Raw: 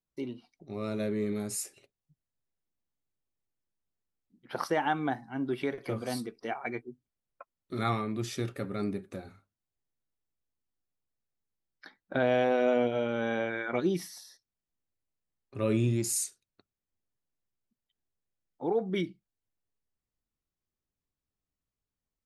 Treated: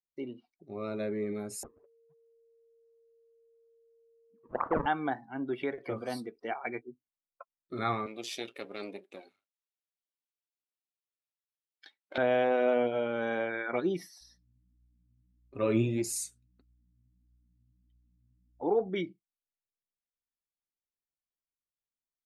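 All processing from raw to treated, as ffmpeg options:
-filter_complex "[0:a]asettb=1/sr,asplit=3[s0][s1][s2];[s0]atrim=end=1.634[s3];[s1]atrim=start=1.63:end=4.86,asetpts=PTS-STARTPTS,afade=t=in:d=0.004:c=qsin,afade=t=out:st=3.226:d=0.004:c=qsin,acrusher=samples=35:mix=1:aa=0.000001:lfo=1:lforange=56:lforate=2.9,lowpass=f=1100:t=q:w=1.6,aeval=exprs='val(0)+0.000891*sin(2*PI*460*n/s)':c=same[s4];[s2]atrim=start=4.856[s5];[s3][s4]acrossfade=d=0.004:c1=hsin:c2=qsin[s6];[s6][s5]acrossfade=d=0.004:c1=qsin:c2=hsin,asettb=1/sr,asplit=3[s7][s8][s9];[s7]atrim=end=8.064[s10];[s8]atrim=start=8.06:end=12.18,asetpts=PTS-STARTPTS,afade=t=in:d=0.004:c=qsin,afade=t=out:st=4.116:d=0.004:c=qsin,aeval=exprs='if(lt(val(0),0),0.251*val(0),val(0))':c=same,highpass=300,highshelf=f=2100:t=q:w=1.5:g=8[s11];[s9]atrim=start=12.176[s12];[s10][s11]acrossfade=d=0.004:c1=hsin:c2=qsin[s13];[s13][s12]acrossfade=d=0.004:c1=qsin:c2=hsin,asettb=1/sr,asplit=3[s14][s15][s16];[s14]atrim=end=14.214[s17];[s15]atrim=start=14.21:end=18.89,asetpts=PTS-STARTPTS,afade=t=in:d=0.004:c=qsin,afade=t=out:st=4.676:d=0.004:c=qsin,acontrast=61,aeval=exprs='val(0)+0.002*(sin(2*PI*60*n/s)+sin(2*PI*2*60*n/s)/2+sin(2*PI*3*60*n/s)/3+sin(2*PI*4*60*n/s)/4+sin(2*PI*5*60*n/s)/5)':c=same,flanger=delay=1.1:depth=8.1:regen=57:speed=1.6:shape=triangular[s18];[s16]atrim=start=18.886[s19];[s17][s18]acrossfade=d=0.004:c1=hsin:c2=qsin[s20];[s20][s19]acrossfade=d=0.004:c1=qsin:c2=hsin,afftdn=nr=12:nf=-50,bass=f=250:g=-7,treble=f=4000:g=-7"

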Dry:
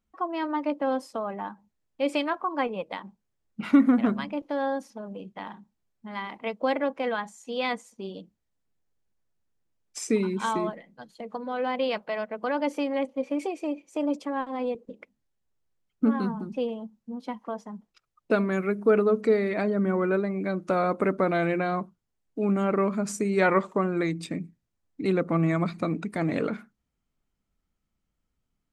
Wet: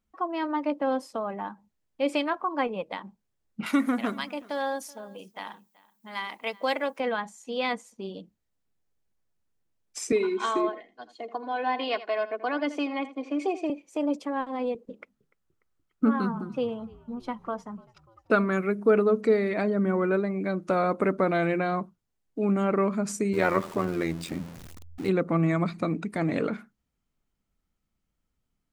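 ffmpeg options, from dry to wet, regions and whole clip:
-filter_complex "[0:a]asettb=1/sr,asplit=3[s0][s1][s2];[s0]atrim=end=3.664[s3];[s1]atrim=start=3.66:end=7,asetpts=PTS-STARTPTS,afade=t=in:d=0.004:c=qsin,afade=t=out:st=3.336:d=0.004:c=qsin,aemphasis=mode=production:type=riaa,aecho=1:1:379:0.0708,atrim=end_sample=147294[s4];[s2]atrim=start=6.996[s5];[s3][s4]acrossfade=d=0.004:c1=hsin:c2=qsin[s6];[s6][s5]acrossfade=d=0.004:c1=qsin:c2=hsin,asettb=1/sr,asplit=3[s7][s8][s9];[s7]atrim=end=10.124[s10];[s8]atrim=start=10.12:end=13.7,asetpts=PTS-STARTPTS,afade=t=in:d=0.004:c=qsin,afade=t=out:st=3.576:d=0.004:c=qsin,acrossover=split=240 7600:gain=0.158 1 0.0794[s11][s12][s13];[s11][s12][s13]amix=inputs=3:normalize=0,aecho=1:1:2.8:0.7,atrim=end_sample=157878,aecho=1:1:82:0.178,atrim=end_sample=157878[s14];[s9]atrim=start=13.696[s15];[s10][s14]acrossfade=d=0.004:c1=hsin:c2=qsin[s16];[s16][s15]acrossfade=d=0.004:c1=qsin:c2=hsin,asettb=1/sr,asplit=3[s17][s18][s19];[s17]atrim=end=14.914[s20];[s18]atrim=start=14.91:end=18.58,asetpts=PTS-STARTPTS,afade=t=in:d=0.004:c=qsin,afade=t=out:st=3.666:d=0.004:c=qsin,equalizer=f=1300:t=o:w=0.43:g=8.5,asplit=5[s21][s22][s23][s24][s25];[s22]adelay=294,afreqshift=-57,volume=0.0631[s26];[s23]adelay=588,afreqshift=-114,volume=0.038[s27];[s24]adelay=882,afreqshift=-171,volume=0.0226[s28];[s25]adelay=1176,afreqshift=-228,volume=0.0136[s29];[s21][s26][s27][s28][s29]amix=inputs=5:normalize=0,atrim=end_sample=161847[s30];[s19]atrim=start=18.576[s31];[s20][s30]acrossfade=d=0.004:c1=hsin:c2=qsin[s32];[s32][s31]acrossfade=d=0.004:c1=qsin:c2=hsin,asettb=1/sr,asplit=3[s33][s34][s35];[s33]atrim=end=23.334[s36];[s34]atrim=start=23.33:end=25.09,asetpts=PTS-STARTPTS,afade=t=in:d=0.004:c=qsin,afade=t=out:st=1.756:d=0.004:c=qsin,aeval=exprs='val(0)+0.5*0.0188*sgn(val(0))':c=same,tremolo=f=84:d=0.75[s37];[s35]atrim=start=25.086[s38];[s36][s37]acrossfade=d=0.004:c1=hsin:c2=qsin[s39];[s39][s38]acrossfade=d=0.004:c1=qsin:c2=hsin"

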